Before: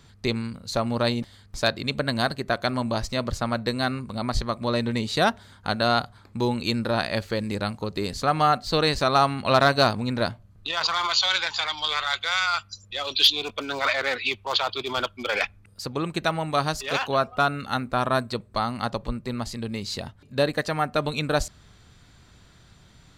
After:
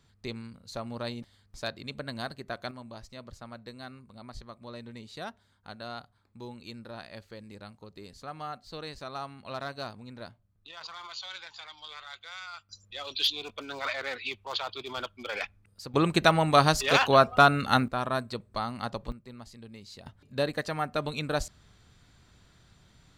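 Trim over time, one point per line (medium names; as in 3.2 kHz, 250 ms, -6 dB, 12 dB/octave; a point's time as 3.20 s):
-12 dB
from 2.71 s -18.5 dB
from 12.69 s -9 dB
from 15.94 s +3.5 dB
from 17.88 s -6.5 dB
from 19.12 s -16 dB
from 20.06 s -6 dB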